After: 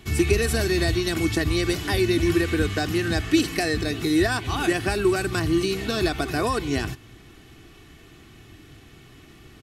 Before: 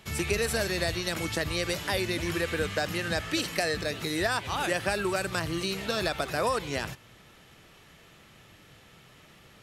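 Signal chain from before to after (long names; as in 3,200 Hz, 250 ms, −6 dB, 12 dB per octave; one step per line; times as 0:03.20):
low shelf with overshoot 390 Hz +7.5 dB, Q 1.5
comb filter 2.7 ms, depth 55%
level +2 dB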